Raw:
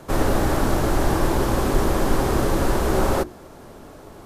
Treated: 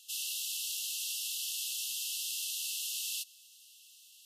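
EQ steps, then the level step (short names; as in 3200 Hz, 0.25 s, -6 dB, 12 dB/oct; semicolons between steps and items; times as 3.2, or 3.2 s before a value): brick-wall FIR high-pass 2600 Hz; 0.0 dB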